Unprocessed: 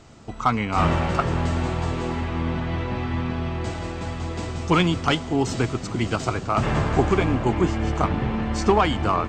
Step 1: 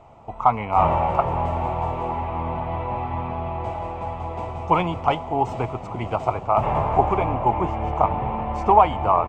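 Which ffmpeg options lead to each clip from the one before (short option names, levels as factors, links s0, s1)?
-af "firequalizer=gain_entry='entry(110,0);entry(200,-4);entry(290,-5);entry(620,9);entry(890,13);entry(1600,-10);entry(2300,0);entry(4200,-16);entry(8200,-15);entry(12000,-5)':delay=0.05:min_phase=1,volume=0.708"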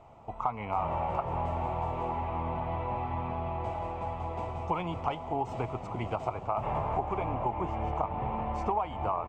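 -af "acompressor=threshold=0.0794:ratio=5,volume=0.531"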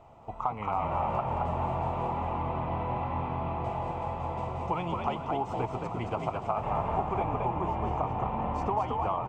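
-filter_complex "[0:a]bandreject=f=2200:w=26,asplit=5[s0][s1][s2][s3][s4];[s1]adelay=221,afreqshift=48,volume=0.631[s5];[s2]adelay=442,afreqshift=96,volume=0.188[s6];[s3]adelay=663,afreqshift=144,volume=0.0569[s7];[s4]adelay=884,afreqshift=192,volume=0.017[s8];[s0][s5][s6][s7][s8]amix=inputs=5:normalize=0"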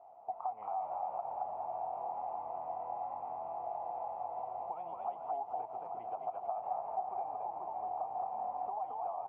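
-af "acompressor=threshold=0.0224:ratio=6,bandpass=f=740:t=q:w=8.5:csg=0,volume=1.88"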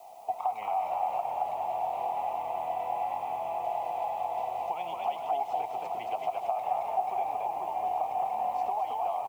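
-filter_complex "[0:a]acrossover=split=220|470|1100[s0][s1][s2][s3];[s3]aexciter=amount=14:drive=3.2:freq=2100[s4];[s0][s1][s2][s4]amix=inputs=4:normalize=0,asplit=2[s5][s6];[s6]adelay=100,highpass=300,lowpass=3400,asoftclip=type=hard:threshold=0.0211,volume=0.251[s7];[s5][s7]amix=inputs=2:normalize=0,volume=2.37"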